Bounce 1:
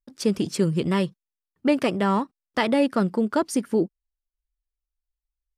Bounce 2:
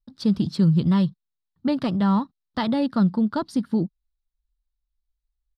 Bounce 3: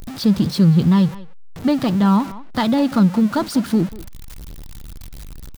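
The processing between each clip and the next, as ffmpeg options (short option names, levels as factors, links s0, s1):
-af "firequalizer=gain_entry='entry(160,0);entry(400,-17);entry(880,-9);entry(1400,-11);entry(2400,-20);entry(3900,-3);entry(6300,-22)':delay=0.05:min_phase=1,volume=2.37"
-filter_complex "[0:a]aeval=exprs='val(0)+0.5*0.0266*sgn(val(0))':c=same,asplit=2[s0][s1];[s1]adelay=190,highpass=300,lowpass=3400,asoftclip=type=hard:threshold=0.119,volume=0.178[s2];[s0][s2]amix=inputs=2:normalize=0,volume=1.68"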